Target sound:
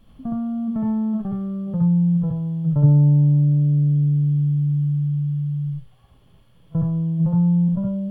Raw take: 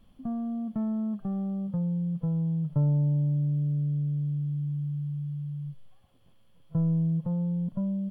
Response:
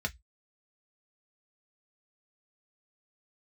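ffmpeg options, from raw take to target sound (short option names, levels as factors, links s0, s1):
-filter_complex "[0:a]asplit=2[s0][s1];[1:a]atrim=start_sample=2205,asetrate=27783,aresample=44100,adelay=66[s2];[s1][s2]afir=irnorm=-1:irlink=0,volume=0.501[s3];[s0][s3]amix=inputs=2:normalize=0,volume=1.78"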